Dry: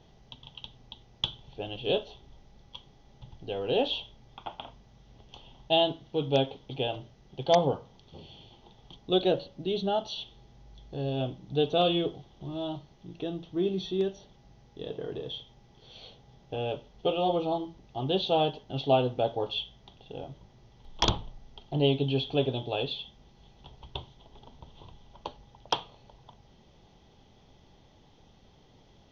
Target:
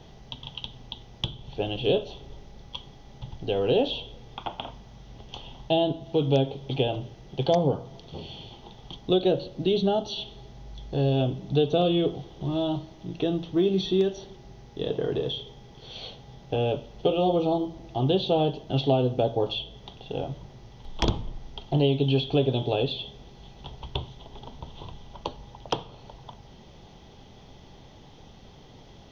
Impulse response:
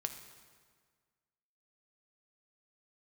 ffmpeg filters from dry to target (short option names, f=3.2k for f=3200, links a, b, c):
-filter_complex "[0:a]acrossover=split=530|5400[a][b][c];[a]acompressor=threshold=-30dB:ratio=4[d];[b]acompressor=threshold=-41dB:ratio=4[e];[c]acompressor=threshold=-57dB:ratio=4[f];[d][e][f]amix=inputs=3:normalize=0,asplit=2[g][h];[1:a]atrim=start_sample=2205[i];[h][i]afir=irnorm=-1:irlink=0,volume=-10dB[j];[g][j]amix=inputs=2:normalize=0,volume=7dB"